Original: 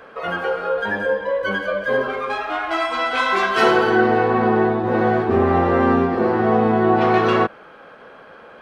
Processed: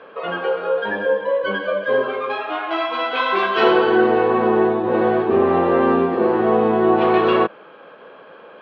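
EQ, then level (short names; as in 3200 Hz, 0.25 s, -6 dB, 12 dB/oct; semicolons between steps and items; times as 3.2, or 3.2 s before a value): speaker cabinet 200–3600 Hz, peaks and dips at 240 Hz -5 dB, 760 Hz -5 dB, 1400 Hz -6 dB, 2000 Hz -7 dB; +3.0 dB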